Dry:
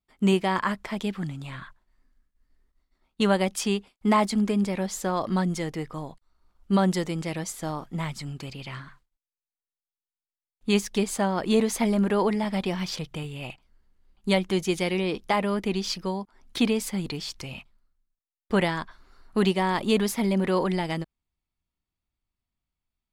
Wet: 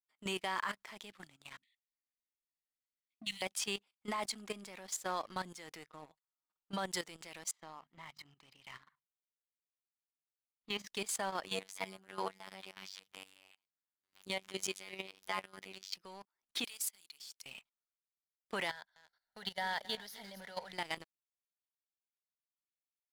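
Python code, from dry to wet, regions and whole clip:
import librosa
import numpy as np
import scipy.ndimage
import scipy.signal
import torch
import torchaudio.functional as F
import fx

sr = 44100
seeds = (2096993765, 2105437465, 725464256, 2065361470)

y = fx.chain(x, sr, fx.brickwall_bandstop(low_hz=320.0, high_hz=1800.0),
    fx.peak_eq(hz=140.0, db=-13.5, octaves=0.75),
    fx.dispersion(late='highs', ms=60.0, hz=420.0), at=(1.57, 3.42))
y = fx.chain(y, sr, fx.high_shelf(hz=3300.0, db=-8.5),
    fx.comb(ms=6.4, depth=0.74), at=(5.86, 6.78))
y = fx.chain(y, sr, fx.air_absorb(metres=190.0),
    fx.hum_notches(base_hz=50, count=5),
    fx.comb(ms=1.0, depth=0.38), at=(7.51, 10.87))
y = fx.chain(y, sr, fx.chopper(hz=2.9, depth_pct=60, duty_pct=50),
    fx.robotise(hz=95.4),
    fx.pre_swell(db_per_s=120.0), at=(11.44, 15.94))
y = fx.chain(y, sr, fx.pre_emphasis(coefficient=0.97),
    fx.band_squash(depth_pct=40), at=(16.64, 17.46))
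y = fx.chain(y, sr, fx.fixed_phaser(hz=1700.0, stages=8),
    fx.echo_single(ms=258, db=-14.0), at=(18.7, 20.73))
y = fx.highpass(y, sr, hz=1400.0, slope=6)
y = fx.leveller(y, sr, passes=2)
y = fx.level_steps(y, sr, step_db=14)
y = y * 10.0 ** (-8.5 / 20.0)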